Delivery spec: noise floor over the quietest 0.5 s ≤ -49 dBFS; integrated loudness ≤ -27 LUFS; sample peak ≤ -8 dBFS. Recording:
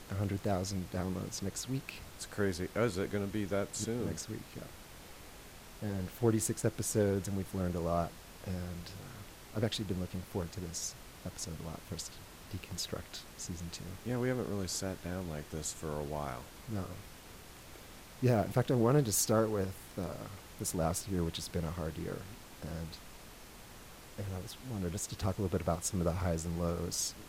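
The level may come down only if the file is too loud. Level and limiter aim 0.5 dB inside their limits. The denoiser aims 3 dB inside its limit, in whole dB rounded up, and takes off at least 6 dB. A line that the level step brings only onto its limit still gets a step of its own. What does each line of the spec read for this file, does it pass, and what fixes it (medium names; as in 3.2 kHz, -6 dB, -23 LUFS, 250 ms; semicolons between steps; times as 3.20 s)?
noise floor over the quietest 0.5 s -52 dBFS: pass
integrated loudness -36.0 LUFS: pass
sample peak -16.5 dBFS: pass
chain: none needed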